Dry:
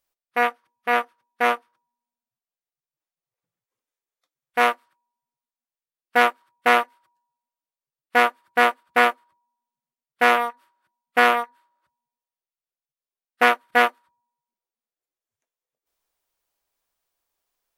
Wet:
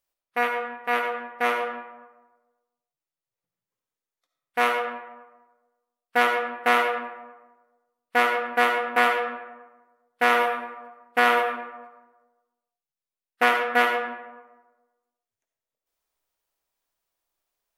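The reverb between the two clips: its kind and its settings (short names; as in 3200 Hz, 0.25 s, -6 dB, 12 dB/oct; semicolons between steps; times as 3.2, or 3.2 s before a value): digital reverb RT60 1.2 s, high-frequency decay 0.5×, pre-delay 30 ms, DRR 3.5 dB; gain -3.5 dB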